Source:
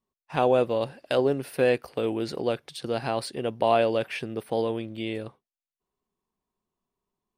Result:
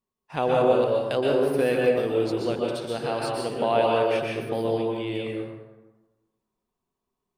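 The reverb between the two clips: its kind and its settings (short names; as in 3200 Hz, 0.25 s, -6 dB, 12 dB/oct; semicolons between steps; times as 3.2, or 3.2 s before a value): plate-style reverb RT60 1.2 s, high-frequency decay 0.55×, pre-delay 0.11 s, DRR -2.5 dB; gain -2.5 dB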